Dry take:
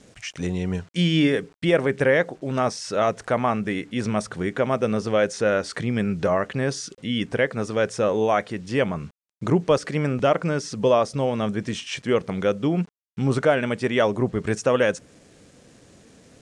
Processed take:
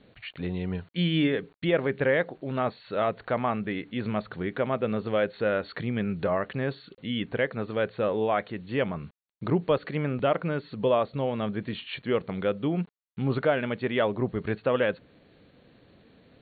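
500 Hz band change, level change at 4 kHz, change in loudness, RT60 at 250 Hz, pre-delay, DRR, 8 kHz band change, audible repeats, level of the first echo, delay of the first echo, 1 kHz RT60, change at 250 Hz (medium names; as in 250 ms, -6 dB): -5.0 dB, -5.5 dB, -5.0 dB, no reverb, no reverb, no reverb, under -40 dB, no echo, no echo, no echo, no reverb, -5.0 dB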